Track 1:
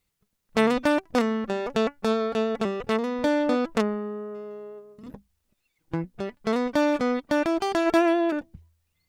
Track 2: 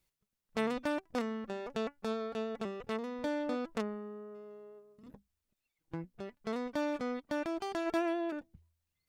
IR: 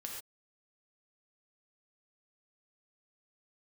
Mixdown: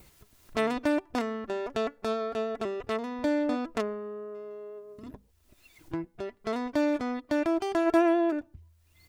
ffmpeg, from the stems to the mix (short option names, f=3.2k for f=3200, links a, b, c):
-filter_complex "[0:a]adynamicequalizer=threshold=0.00891:dfrequency=3600:dqfactor=0.86:tfrequency=3600:tqfactor=0.86:attack=5:release=100:ratio=0.375:range=2:mode=cutabove:tftype=bell,volume=-6dB[a];[1:a]highpass=51,tiltshelf=f=1.4k:g=5.5,adelay=2.9,volume=-3.5dB,asplit=2[b][c];[c]volume=-16.5dB[d];[2:a]atrim=start_sample=2205[e];[d][e]afir=irnorm=-1:irlink=0[f];[a][b][f]amix=inputs=3:normalize=0,acompressor=mode=upward:threshold=-37dB:ratio=2.5"